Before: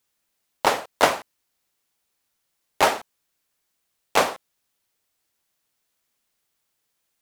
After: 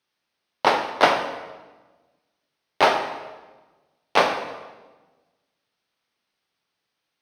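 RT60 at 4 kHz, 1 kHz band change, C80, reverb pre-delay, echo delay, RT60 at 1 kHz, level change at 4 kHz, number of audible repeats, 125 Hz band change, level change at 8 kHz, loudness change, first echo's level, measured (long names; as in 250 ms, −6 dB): 1.0 s, +2.5 dB, 9.0 dB, 5 ms, no echo audible, 1.2 s, +1.5 dB, no echo audible, +0.5 dB, −8.5 dB, +1.0 dB, no echo audible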